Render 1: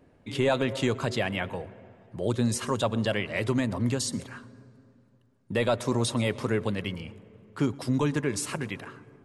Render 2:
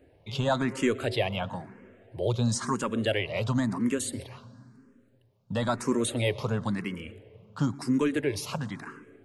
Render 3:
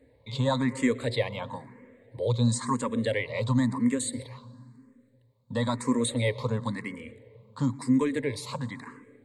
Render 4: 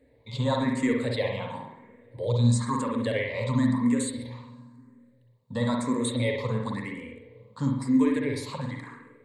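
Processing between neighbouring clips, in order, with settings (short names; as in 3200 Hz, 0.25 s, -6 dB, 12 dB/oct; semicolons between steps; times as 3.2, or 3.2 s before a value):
endless phaser +0.98 Hz; gain +2.5 dB
ripple EQ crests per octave 1, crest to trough 13 dB; gain -3 dB
reverb, pre-delay 50 ms, DRR 1 dB; gain -2 dB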